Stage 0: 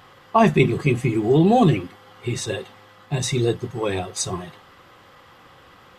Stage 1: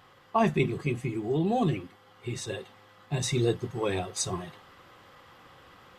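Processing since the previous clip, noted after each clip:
speech leveller within 4 dB 2 s
level −8.5 dB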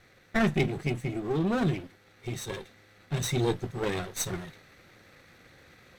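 lower of the sound and its delayed copy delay 0.51 ms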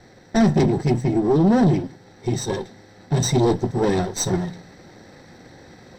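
hard clipping −27 dBFS, distortion −9 dB
convolution reverb RT60 0.45 s, pre-delay 3 ms, DRR 20.5 dB
level +2 dB

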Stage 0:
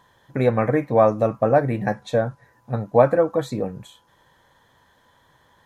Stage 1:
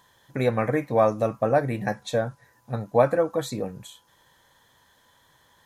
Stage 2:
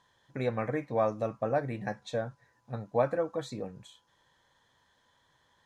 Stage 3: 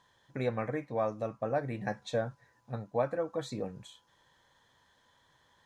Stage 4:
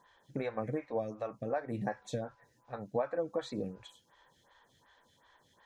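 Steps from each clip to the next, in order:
high-shelf EQ 3,000 Hz +11 dB; level −4.5 dB
low-pass filter 6,700 Hz 12 dB per octave; level −8 dB
speech leveller within 3 dB 0.5 s; level −1.5 dB
downward compressor 2.5 to 1, threshold −35 dBFS, peak gain reduction 8 dB; phaser with staggered stages 2.7 Hz; level +4.5 dB

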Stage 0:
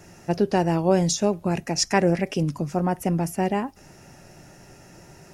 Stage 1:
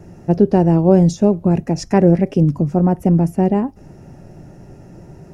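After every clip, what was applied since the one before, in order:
tilt shelving filter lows +10 dB, about 900 Hz
level +1.5 dB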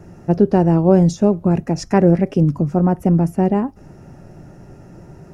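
parametric band 1,300 Hz +5 dB 0.71 octaves
level −1 dB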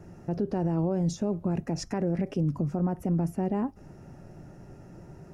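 brickwall limiter −13 dBFS, peak gain reduction 11 dB
level −7 dB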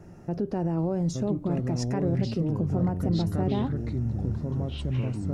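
delay with pitch and tempo change per echo 773 ms, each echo −5 semitones, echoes 3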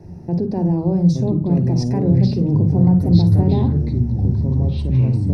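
convolution reverb RT60 0.30 s, pre-delay 44 ms, DRR 9 dB
level −2 dB

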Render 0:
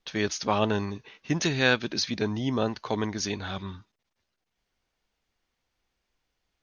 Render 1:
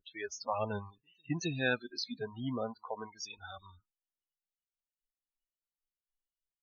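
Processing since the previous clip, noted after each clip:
backwards echo 265 ms −23 dB
spectral peaks only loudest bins 32
noise reduction from a noise print of the clip's start 24 dB
level −7.5 dB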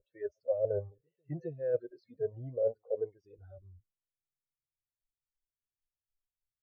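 drawn EQ curve 150 Hz 0 dB, 220 Hz −21 dB, 550 Hz +11 dB, 1,000 Hz −26 dB, 1,800 Hz +11 dB, 3,200 Hz −13 dB, 4,600 Hz +4 dB
reversed playback
downward compressor 16 to 1, threshold −37 dBFS, peak gain reduction 17 dB
reversed playback
low-pass filter sweep 560 Hz → 110 Hz, 0:02.64–0:04.93
level +3.5 dB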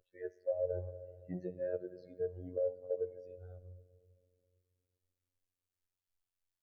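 convolution reverb RT60 2.3 s, pre-delay 5 ms, DRR 16.5 dB
phases set to zero 90.4 Hz
downward compressor 2.5 to 1, threshold −35 dBFS, peak gain reduction 7 dB
level +2 dB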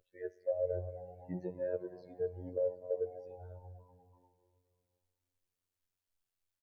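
echo with shifted repeats 245 ms, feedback 62%, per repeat +89 Hz, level −22.5 dB
level +1 dB

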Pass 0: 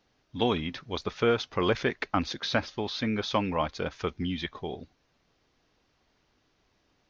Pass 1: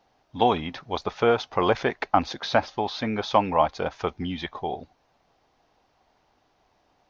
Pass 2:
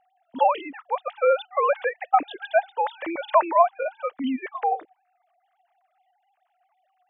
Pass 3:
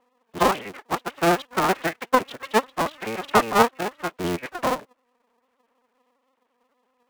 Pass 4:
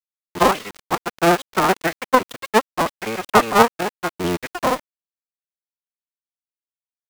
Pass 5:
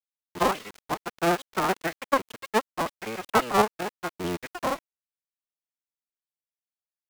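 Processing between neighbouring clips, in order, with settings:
parametric band 780 Hz +12.5 dB 0.98 octaves
three sine waves on the formant tracks; level +1.5 dB
sub-harmonics by changed cycles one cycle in 3, inverted
centre clipping without the shift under −34 dBFS; level +4 dB
wow of a warped record 45 rpm, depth 160 cents; level −8 dB

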